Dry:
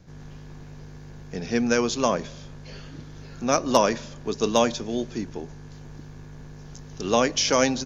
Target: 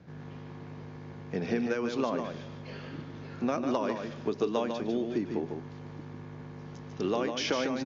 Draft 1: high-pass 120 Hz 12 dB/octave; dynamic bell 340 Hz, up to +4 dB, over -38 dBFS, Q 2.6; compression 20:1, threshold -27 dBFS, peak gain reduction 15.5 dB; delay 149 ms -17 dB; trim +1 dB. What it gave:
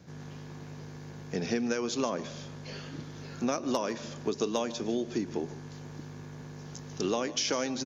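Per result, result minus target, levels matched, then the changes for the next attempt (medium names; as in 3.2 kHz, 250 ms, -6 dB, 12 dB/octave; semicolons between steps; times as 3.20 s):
echo-to-direct -11 dB; 4 kHz band +4.0 dB
change: delay 149 ms -6 dB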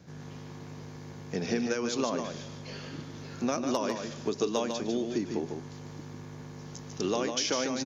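4 kHz band +3.5 dB
add after dynamic bell: low-pass 2.9 kHz 12 dB/octave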